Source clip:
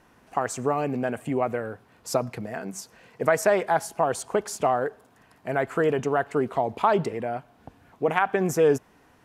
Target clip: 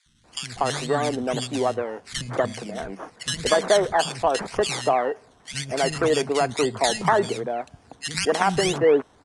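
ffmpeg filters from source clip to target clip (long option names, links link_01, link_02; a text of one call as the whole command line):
ffmpeg -i in.wav -filter_complex "[0:a]acrusher=samples=15:mix=1:aa=0.000001:lfo=1:lforange=9:lforate=1.9,aresample=22050,aresample=44100,acrossover=split=210|2000[link_01][link_02][link_03];[link_01]adelay=60[link_04];[link_02]adelay=240[link_05];[link_04][link_05][link_03]amix=inputs=3:normalize=0,volume=3dB" out.wav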